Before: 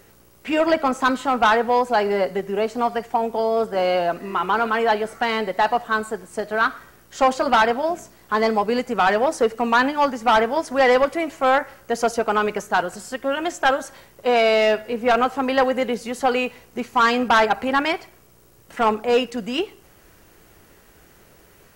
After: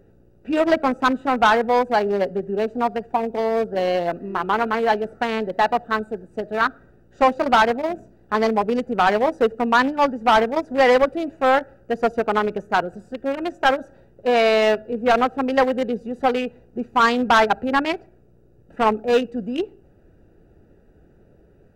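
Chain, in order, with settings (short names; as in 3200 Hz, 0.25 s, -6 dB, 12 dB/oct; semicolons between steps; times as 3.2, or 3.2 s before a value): Wiener smoothing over 41 samples; gain +2 dB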